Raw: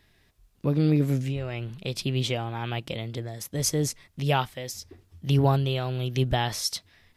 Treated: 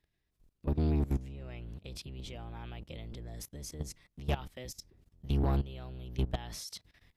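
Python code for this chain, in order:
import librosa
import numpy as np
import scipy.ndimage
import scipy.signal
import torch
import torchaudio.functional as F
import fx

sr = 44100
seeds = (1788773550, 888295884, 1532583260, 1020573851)

y = fx.octave_divider(x, sr, octaves=1, level_db=4.0)
y = fx.level_steps(y, sr, step_db=19)
y = 10.0 ** (-18.5 / 20.0) * np.tanh(y / 10.0 ** (-18.5 / 20.0))
y = F.gain(torch.from_numpy(y), -5.0).numpy()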